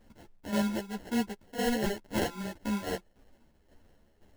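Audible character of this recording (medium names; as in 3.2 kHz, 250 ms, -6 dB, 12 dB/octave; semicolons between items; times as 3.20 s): aliases and images of a low sample rate 1.2 kHz, jitter 0%; tremolo saw down 1.9 Hz, depth 70%; a quantiser's noise floor 12-bit, dither none; a shimmering, thickened sound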